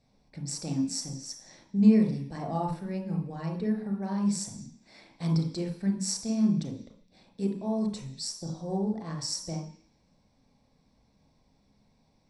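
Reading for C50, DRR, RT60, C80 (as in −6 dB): 6.5 dB, 2.0 dB, 0.50 s, 11.0 dB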